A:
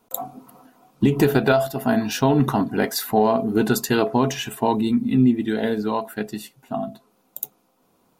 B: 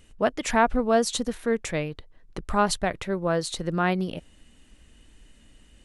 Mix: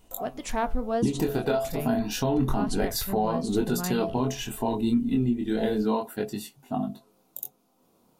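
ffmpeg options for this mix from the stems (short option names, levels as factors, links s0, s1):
-filter_complex "[0:a]flanger=delay=20:depth=5.8:speed=0.3,volume=1.33[s0];[1:a]asubboost=boost=7:cutoff=120,flanger=delay=5.2:depth=8:regen=-75:speed=0.62:shape=triangular,acontrast=82,volume=0.447[s1];[s0][s1]amix=inputs=2:normalize=0,equalizer=f=1700:t=o:w=1.4:g=-6,alimiter=limit=0.168:level=0:latency=1:release=399"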